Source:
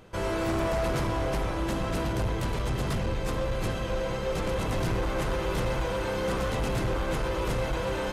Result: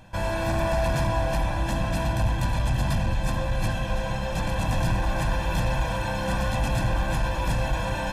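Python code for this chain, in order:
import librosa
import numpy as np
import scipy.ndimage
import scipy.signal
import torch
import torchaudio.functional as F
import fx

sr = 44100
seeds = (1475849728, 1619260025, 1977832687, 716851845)

p1 = x + 0.96 * np.pad(x, (int(1.2 * sr / 1000.0), 0))[:len(x)]
y = p1 + fx.echo_single(p1, sr, ms=331, db=-12.5, dry=0)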